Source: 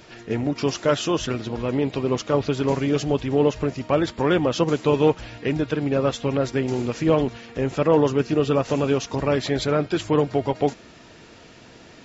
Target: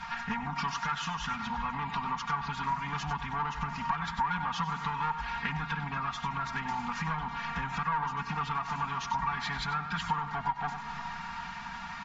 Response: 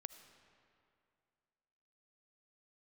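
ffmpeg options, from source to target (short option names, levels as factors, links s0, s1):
-filter_complex "[0:a]aresample=16000,asoftclip=type=tanh:threshold=0.141,aresample=44100,firequalizer=gain_entry='entry(190,0);entry(300,-26);entry(570,-28);entry(820,11);entry(2800,0)':delay=0.05:min_phase=1,asplit=2[s0][s1];[1:a]atrim=start_sample=2205,asetrate=33075,aresample=44100,adelay=96[s2];[s1][s2]afir=irnorm=-1:irlink=0,volume=0.422[s3];[s0][s3]amix=inputs=2:normalize=0,acompressor=threshold=0.02:ratio=6,aemphasis=mode=reproduction:type=50fm,aecho=1:1:4.3:0.95,volume=1.26"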